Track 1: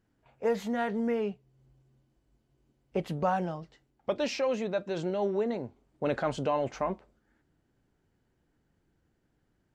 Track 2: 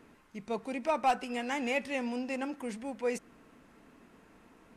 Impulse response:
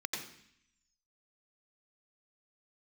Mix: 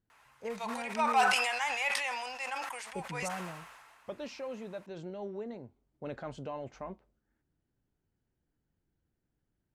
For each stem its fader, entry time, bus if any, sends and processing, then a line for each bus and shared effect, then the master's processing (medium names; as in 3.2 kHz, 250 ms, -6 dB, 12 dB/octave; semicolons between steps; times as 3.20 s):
-12.0 dB, 0.00 s, no send, none
+2.5 dB, 0.10 s, no send, Chebyshev high-pass 840 Hz, order 3; decay stretcher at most 31 dB/s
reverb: none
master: bass shelf 180 Hz +6 dB